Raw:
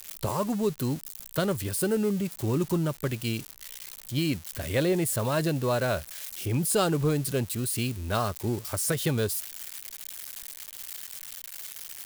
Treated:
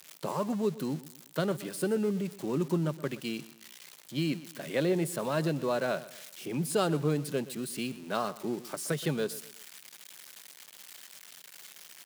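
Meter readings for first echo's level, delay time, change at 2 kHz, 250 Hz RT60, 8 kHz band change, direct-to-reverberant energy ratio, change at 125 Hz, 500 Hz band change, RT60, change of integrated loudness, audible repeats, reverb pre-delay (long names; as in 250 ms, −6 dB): −17.5 dB, 123 ms, −3.5 dB, no reverb audible, −9.0 dB, no reverb audible, −6.5 dB, −2.5 dB, no reverb audible, −3.5 dB, 3, no reverb audible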